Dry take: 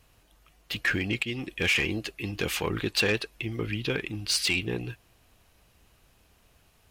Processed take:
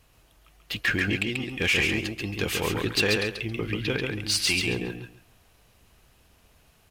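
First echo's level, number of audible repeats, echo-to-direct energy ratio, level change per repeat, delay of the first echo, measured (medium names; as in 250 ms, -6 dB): -4.0 dB, 3, -4.0 dB, -14.0 dB, 137 ms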